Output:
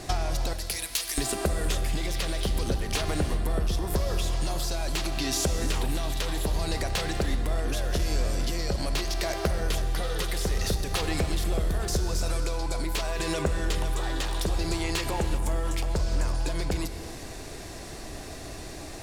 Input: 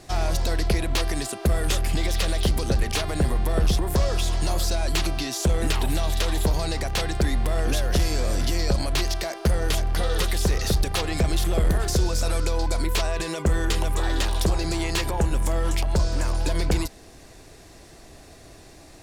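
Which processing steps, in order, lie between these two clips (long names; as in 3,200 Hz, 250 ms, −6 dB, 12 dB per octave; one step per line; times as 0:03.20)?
0:00.53–0:01.18: first-order pre-emphasis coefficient 0.97
downward compressor 12 to 1, threshold −31 dBFS, peak gain reduction 14.5 dB
reverb whose tail is shaped and stops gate 400 ms flat, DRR 8 dB
level +7 dB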